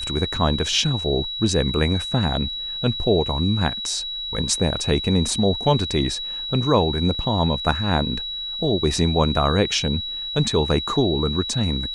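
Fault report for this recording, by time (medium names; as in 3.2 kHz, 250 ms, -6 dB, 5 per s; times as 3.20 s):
whine 3.9 kHz -27 dBFS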